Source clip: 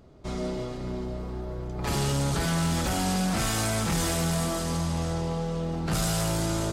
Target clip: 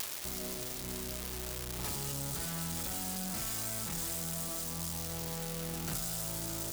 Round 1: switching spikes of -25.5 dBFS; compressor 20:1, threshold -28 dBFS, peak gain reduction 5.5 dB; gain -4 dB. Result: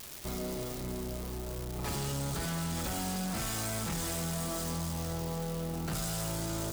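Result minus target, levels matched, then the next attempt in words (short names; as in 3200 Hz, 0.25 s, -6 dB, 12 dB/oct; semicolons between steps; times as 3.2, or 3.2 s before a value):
switching spikes: distortion -11 dB
switching spikes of -14 dBFS; compressor 20:1, threshold -28 dBFS, peak gain reduction 12.5 dB; gain -4 dB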